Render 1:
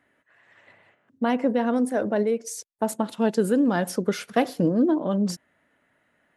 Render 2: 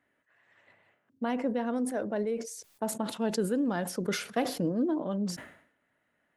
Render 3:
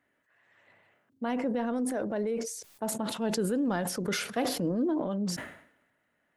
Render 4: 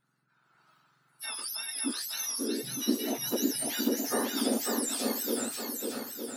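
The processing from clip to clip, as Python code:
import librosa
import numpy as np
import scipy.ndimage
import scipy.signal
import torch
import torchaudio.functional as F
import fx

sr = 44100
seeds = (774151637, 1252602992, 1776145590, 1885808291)

y1 = fx.sustainer(x, sr, db_per_s=94.0)
y1 = F.gain(torch.from_numpy(y1), -8.0).numpy()
y2 = fx.transient(y1, sr, attack_db=-2, sustain_db=6)
y3 = fx.octave_mirror(y2, sr, pivot_hz=1600.0)
y3 = fx.echo_swing(y3, sr, ms=911, ratio=1.5, feedback_pct=42, wet_db=-3.5)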